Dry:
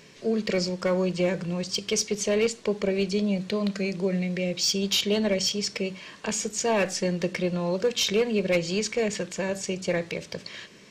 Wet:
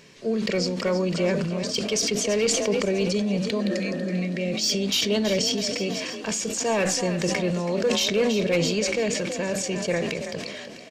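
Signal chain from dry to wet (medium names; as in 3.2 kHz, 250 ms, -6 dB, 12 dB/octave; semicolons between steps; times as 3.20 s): spectral replace 3.63–4.08 s, 240–1900 Hz after; on a send: frequency-shifting echo 327 ms, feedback 49%, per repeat +36 Hz, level -11 dB; on the sum: decay stretcher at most 28 dB/s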